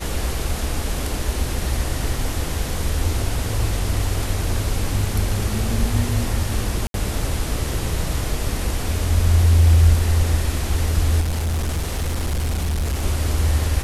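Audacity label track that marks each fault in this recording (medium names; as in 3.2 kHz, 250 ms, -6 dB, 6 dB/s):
6.870000	6.940000	dropout 72 ms
11.200000	13.040000	clipped -18.5 dBFS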